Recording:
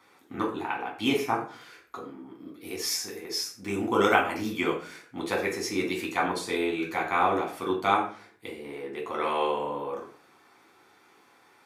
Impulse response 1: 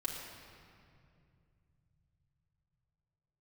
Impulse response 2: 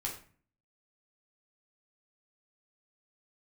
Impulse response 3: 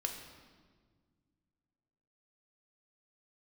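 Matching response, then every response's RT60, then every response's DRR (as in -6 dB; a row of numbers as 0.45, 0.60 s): 2; 2.4, 0.45, 1.6 s; -4.0, -2.0, 2.5 dB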